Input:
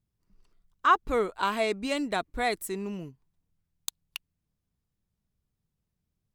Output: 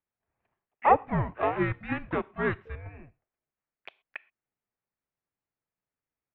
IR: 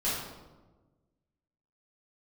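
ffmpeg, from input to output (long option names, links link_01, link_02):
-filter_complex "[0:a]asplit=3[link_01][link_02][link_03];[link_02]asetrate=33038,aresample=44100,atempo=1.33484,volume=-6dB[link_04];[link_03]asetrate=88200,aresample=44100,atempo=0.5,volume=-15dB[link_05];[link_01][link_04][link_05]amix=inputs=3:normalize=0,asplit=2[link_06][link_07];[1:a]atrim=start_sample=2205,afade=type=out:start_time=0.18:duration=0.01,atrim=end_sample=8379,highshelf=frequency=2500:gain=12[link_08];[link_07][link_08]afir=irnorm=-1:irlink=0,volume=-31.5dB[link_09];[link_06][link_09]amix=inputs=2:normalize=0,highpass=frequency=420:width_type=q:width=0.5412,highpass=frequency=420:width_type=q:width=1.307,lowpass=frequency=2700:width_type=q:width=0.5176,lowpass=frequency=2700:width_type=q:width=0.7071,lowpass=frequency=2700:width_type=q:width=1.932,afreqshift=-310"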